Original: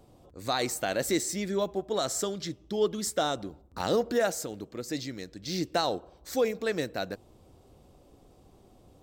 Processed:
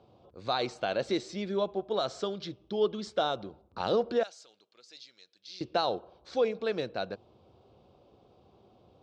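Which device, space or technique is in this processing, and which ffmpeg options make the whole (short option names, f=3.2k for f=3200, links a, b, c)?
guitar cabinet: -filter_complex "[0:a]asettb=1/sr,asplit=3[a][b][c];[a]atrim=end=4.234[d];[b]atrim=start=4.23:end=5.61,asetpts=PTS-STARTPTS,afade=t=in:d=0.004:c=qsin,afade=t=out:st=1.376:d=0.004:c=qsin,aderivative[e];[c]atrim=start=5.606[f];[d][e]acrossfade=d=0.004:c1=hsin:c2=qsin[g];[g][f]acrossfade=d=0.004:c1=qsin:c2=hsin,highpass=110,equalizer=f=160:t=q:w=4:g=-5,equalizer=f=280:t=q:w=4:g=-8,equalizer=f=1.9k:t=q:w=4:g=-10,lowpass=f=4.3k:w=0.5412,lowpass=f=4.3k:w=1.3066"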